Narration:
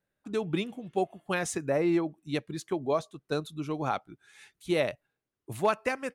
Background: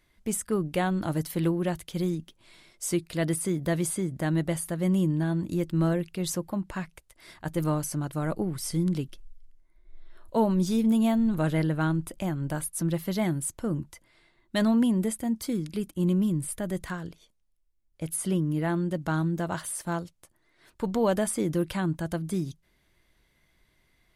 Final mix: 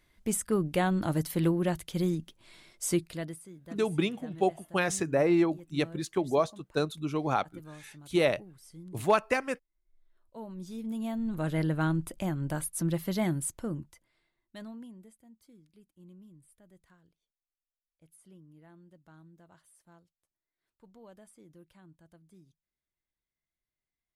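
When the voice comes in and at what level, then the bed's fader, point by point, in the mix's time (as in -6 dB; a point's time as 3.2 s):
3.45 s, +2.0 dB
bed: 3.02 s -0.5 dB
3.47 s -21 dB
10.31 s -21 dB
11.7 s -2 dB
13.47 s -2 dB
15.18 s -28.5 dB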